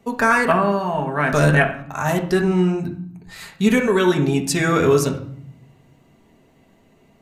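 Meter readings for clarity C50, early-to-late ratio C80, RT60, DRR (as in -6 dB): 10.0 dB, 14.0 dB, 0.60 s, 1.5 dB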